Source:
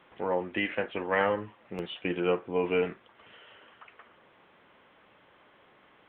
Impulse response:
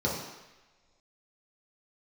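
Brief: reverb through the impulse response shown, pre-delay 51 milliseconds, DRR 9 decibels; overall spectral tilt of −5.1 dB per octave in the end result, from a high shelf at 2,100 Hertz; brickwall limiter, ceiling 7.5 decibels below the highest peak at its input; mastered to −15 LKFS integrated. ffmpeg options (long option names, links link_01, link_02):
-filter_complex "[0:a]highshelf=frequency=2100:gain=-8.5,alimiter=limit=-21.5dB:level=0:latency=1,asplit=2[link_01][link_02];[1:a]atrim=start_sample=2205,adelay=51[link_03];[link_02][link_03]afir=irnorm=-1:irlink=0,volume=-19dB[link_04];[link_01][link_04]amix=inputs=2:normalize=0,volume=17.5dB"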